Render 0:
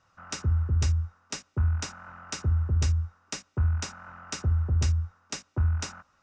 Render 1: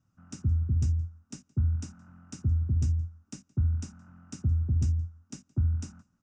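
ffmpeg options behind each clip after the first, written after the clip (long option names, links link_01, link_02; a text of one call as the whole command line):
ffmpeg -i in.wav -filter_complex "[0:a]equalizer=frequency=125:width_type=o:width=1:gain=7,equalizer=frequency=250:width_type=o:width=1:gain=10,equalizer=frequency=500:width_type=o:width=1:gain=-11,equalizer=frequency=1000:width_type=o:width=1:gain=-10,equalizer=frequency=2000:width_type=o:width=1:gain=-11,equalizer=frequency=4000:width_type=o:width=1:gain=-12,asplit=2[link_01][link_02];[link_02]adelay=169.1,volume=-24dB,highshelf=frequency=4000:gain=-3.8[link_03];[link_01][link_03]amix=inputs=2:normalize=0,volume=-5dB" out.wav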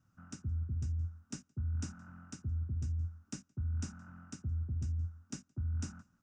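ffmpeg -i in.wav -af "equalizer=frequency=1500:width_type=o:width=0.56:gain=5.5,areverse,acompressor=threshold=-33dB:ratio=12,areverse" out.wav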